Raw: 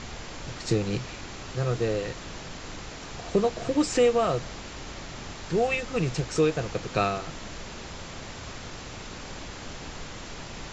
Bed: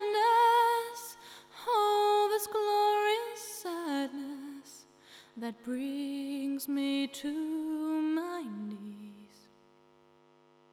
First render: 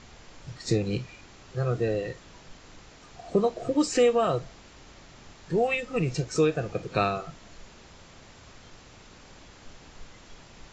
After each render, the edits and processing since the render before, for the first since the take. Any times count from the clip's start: noise print and reduce 11 dB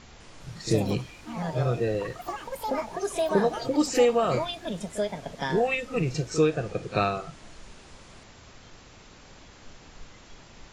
pre-echo 39 ms -14 dB; ever faster or slower copies 202 ms, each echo +5 st, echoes 3, each echo -6 dB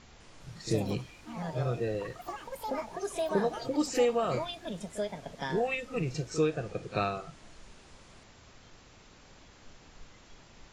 trim -5.5 dB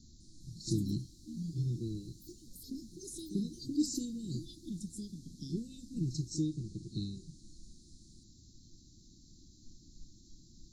Chebyshev band-stop 340–4000 Hz, order 5; peaking EQ 1.3 kHz -3 dB 2.6 oct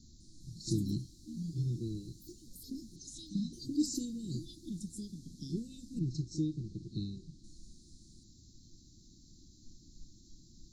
2.96–3.53 s: FFT filter 280 Hz 0 dB, 420 Hz -28 dB, 2.6 kHz +5 dB, 7.1 kHz 0 dB, 12 kHz -19 dB; 5.99–7.44 s: distance through air 94 m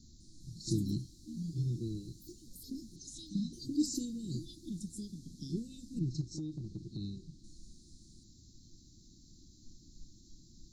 6.21–7.04 s: compression, threshold -36 dBFS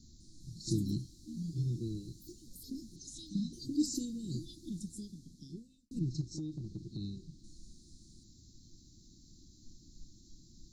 4.81–5.91 s: fade out

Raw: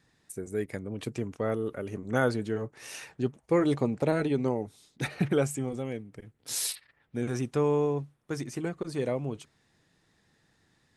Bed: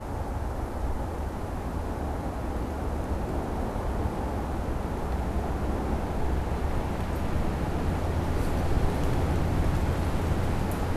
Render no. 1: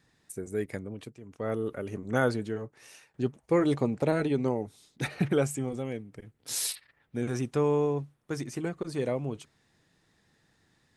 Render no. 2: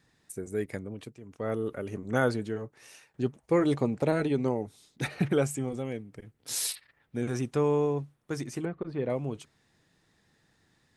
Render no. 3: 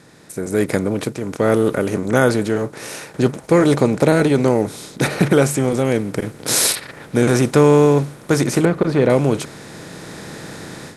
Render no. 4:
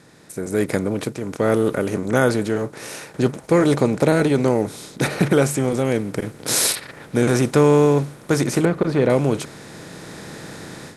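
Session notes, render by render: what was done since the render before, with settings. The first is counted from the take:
0.79–1.58 s: dip -16 dB, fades 0.37 s; 2.30–3.14 s: fade out, to -21 dB
8.65–9.10 s: distance through air 380 m
spectral levelling over time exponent 0.6; level rider gain up to 15 dB
trim -2.5 dB

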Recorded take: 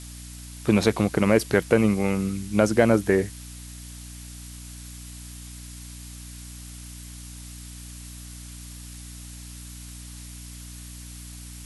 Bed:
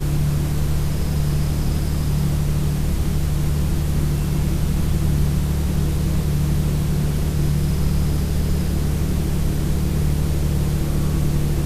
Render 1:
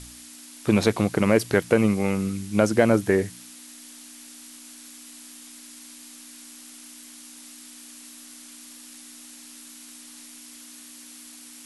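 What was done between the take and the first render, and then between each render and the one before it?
de-hum 60 Hz, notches 3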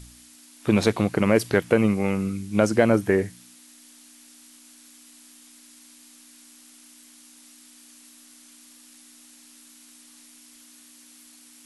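noise print and reduce 6 dB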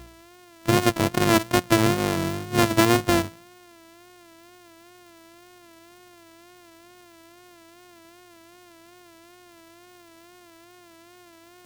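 sorted samples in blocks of 128 samples; wow and flutter 72 cents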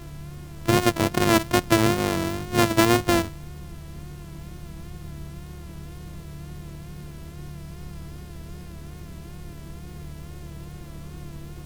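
add bed -19 dB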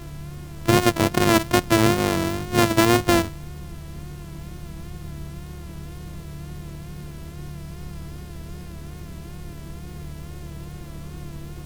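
trim +2.5 dB; peak limiter -3 dBFS, peak gain reduction 3 dB

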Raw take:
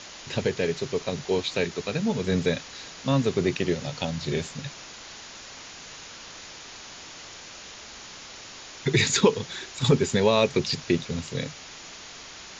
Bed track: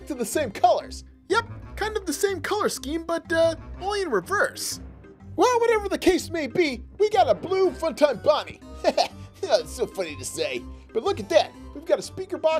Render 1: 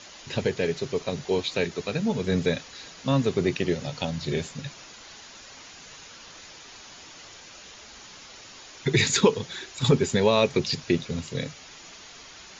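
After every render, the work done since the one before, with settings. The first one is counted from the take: noise reduction 6 dB, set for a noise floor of -44 dBFS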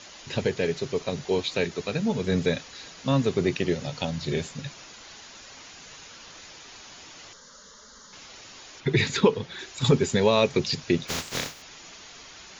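7.33–8.13 s: static phaser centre 500 Hz, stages 8; 8.80–9.59 s: distance through air 140 m; 11.07–11.61 s: spectral contrast reduction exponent 0.29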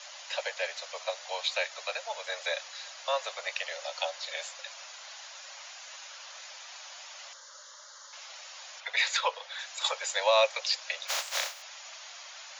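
steep high-pass 540 Hz 96 dB/octave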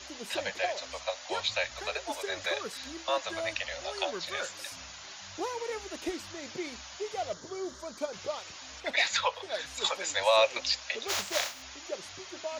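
add bed track -16 dB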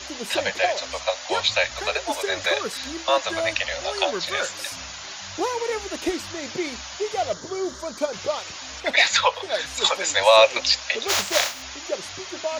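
trim +9.5 dB

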